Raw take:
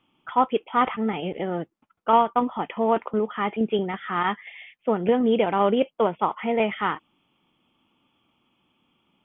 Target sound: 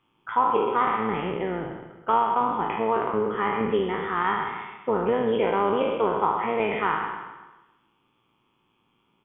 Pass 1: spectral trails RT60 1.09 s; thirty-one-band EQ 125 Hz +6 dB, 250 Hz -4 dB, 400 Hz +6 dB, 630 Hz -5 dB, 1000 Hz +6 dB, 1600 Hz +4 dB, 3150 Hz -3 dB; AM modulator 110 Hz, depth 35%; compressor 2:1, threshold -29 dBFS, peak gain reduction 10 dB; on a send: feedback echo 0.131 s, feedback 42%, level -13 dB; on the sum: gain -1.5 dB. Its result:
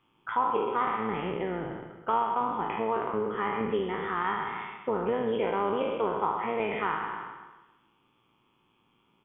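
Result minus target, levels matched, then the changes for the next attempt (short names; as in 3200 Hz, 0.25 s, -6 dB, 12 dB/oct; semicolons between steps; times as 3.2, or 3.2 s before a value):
compressor: peak gain reduction +5 dB
change: compressor 2:1, threshold -18.5 dBFS, peak gain reduction 4.5 dB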